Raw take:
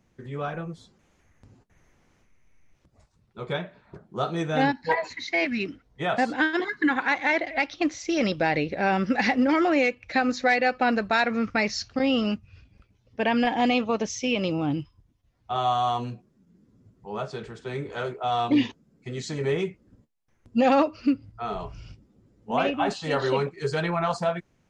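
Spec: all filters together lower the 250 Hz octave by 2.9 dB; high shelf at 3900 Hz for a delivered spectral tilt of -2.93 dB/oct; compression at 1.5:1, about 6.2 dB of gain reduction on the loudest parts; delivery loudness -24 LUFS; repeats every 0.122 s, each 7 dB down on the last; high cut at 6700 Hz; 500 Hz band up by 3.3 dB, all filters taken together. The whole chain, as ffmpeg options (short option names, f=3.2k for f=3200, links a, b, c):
-af "lowpass=6.7k,equalizer=f=250:t=o:g=-5,equalizer=f=500:t=o:g=5,highshelf=f=3.9k:g=6,acompressor=threshold=-32dB:ratio=1.5,aecho=1:1:122|244|366|488|610:0.447|0.201|0.0905|0.0407|0.0183,volume=4.5dB"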